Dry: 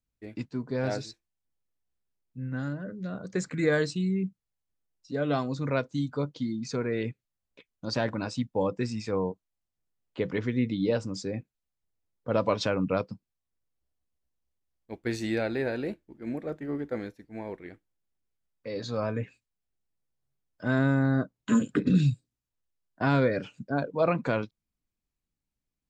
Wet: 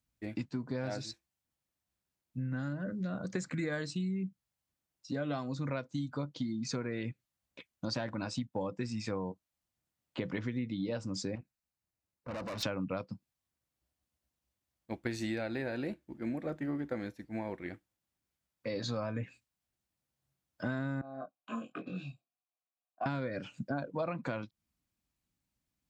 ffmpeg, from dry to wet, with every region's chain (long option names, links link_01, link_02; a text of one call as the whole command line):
ffmpeg -i in.wav -filter_complex "[0:a]asettb=1/sr,asplit=3[link_01][link_02][link_03];[link_01]atrim=end=11.354[link_04];[link_02]atrim=start=11.35:end=12.63,asetpts=PTS-STARTPTS,afade=type=in:duration=0.004:curve=qsin,afade=type=out:start_time=1.276:duration=0.004:curve=qsin,acompressor=threshold=-27dB:ratio=4:attack=3.2:release=140:knee=1:detection=peak,aeval=exprs='(tanh(100*val(0)+0.7)-tanh(0.7))/100':channel_layout=same,bandreject=frequency=3300:width=6.7[link_05];[link_03]atrim=start=12.626[link_06];[link_04][link_05]acrossfade=duration=0.004:curve1=hsin:curve2=qsin[link_07];[link_07][link_06]acrossfade=duration=0.004:curve1=qsin:curve2=hsin,asettb=1/sr,asplit=3[link_08][link_09][link_10];[link_08]atrim=end=21.014[link_11];[link_09]atrim=start=21.01:end=23.06,asetpts=PTS-STARTPTS,afade=type=in:duration=0.004:curve=qsin,afade=type=out:start_time=2.046:duration=0.004:curve=qsin,asplit=3[link_12][link_13][link_14];[link_12]bandpass=frequency=730:width_type=q:width=8,volume=0dB[link_15];[link_13]bandpass=frequency=1090:width_type=q:width=8,volume=-6dB[link_16];[link_14]bandpass=frequency=2440:width_type=q:width=8,volume=-9dB[link_17];[link_15][link_16][link_17]amix=inputs=3:normalize=0,asplit=2[link_18][link_19];[link_19]adelay=22,volume=-2dB[link_20];[link_18][link_20]amix=inputs=2:normalize=0,atrim=end_sample=90405[link_21];[link_10]atrim=start=23.056[link_22];[link_11][link_21]acrossfade=duration=0.004:curve1=hsin:curve2=qsin[link_23];[link_23][link_22]acrossfade=duration=0.004:curve1=qsin:curve2=hsin,highpass=54,equalizer=frequency=430:width=7.4:gain=-11,acompressor=threshold=-37dB:ratio=6,volume=4dB" out.wav